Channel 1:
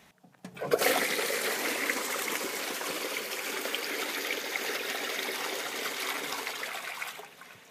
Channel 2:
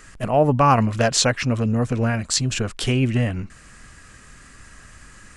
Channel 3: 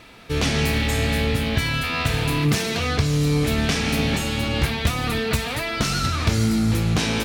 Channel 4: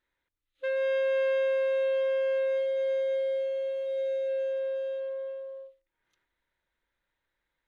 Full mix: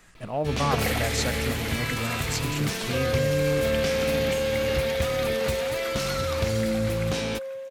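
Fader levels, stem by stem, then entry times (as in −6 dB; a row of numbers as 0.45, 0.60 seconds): −3.0, −11.0, −7.5, +0.5 decibels; 0.00, 0.00, 0.15, 2.30 seconds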